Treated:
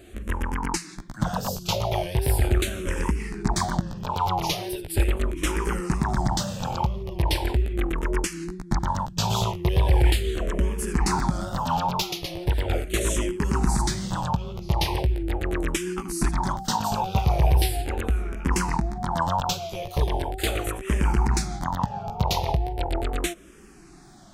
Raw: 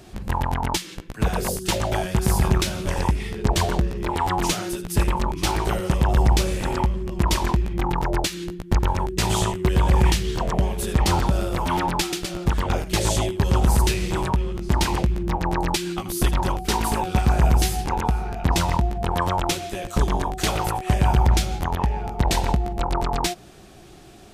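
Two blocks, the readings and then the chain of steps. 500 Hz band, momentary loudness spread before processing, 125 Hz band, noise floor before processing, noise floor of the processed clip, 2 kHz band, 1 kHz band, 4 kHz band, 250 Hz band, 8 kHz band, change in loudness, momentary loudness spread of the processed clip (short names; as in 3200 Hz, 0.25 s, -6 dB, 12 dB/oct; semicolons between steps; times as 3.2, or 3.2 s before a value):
-3.0 dB, 6 LU, -3.5 dB, -43 dBFS, -45 dBFS, -3.0 dB, -3.0 dB, -3.0 dB, -3.0 dB, -3.0 dB, -3.0 dB, 6 LU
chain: wow and flutter 79 cents; endless phaser -0.39 Hz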